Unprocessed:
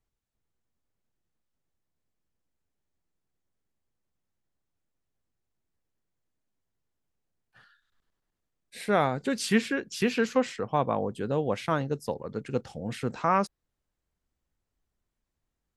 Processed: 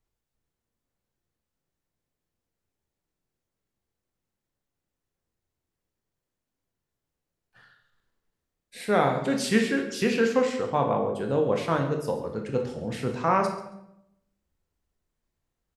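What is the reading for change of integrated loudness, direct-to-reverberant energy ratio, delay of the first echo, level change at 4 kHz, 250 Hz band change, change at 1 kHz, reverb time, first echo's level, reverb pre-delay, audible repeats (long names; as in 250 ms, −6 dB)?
+3.0 dB, 2.5 dB, 137 ms, +1.5 dB, +2.5 dB, +2.0 dB, 0.80 s, −16.0 dB, 18 ms, 1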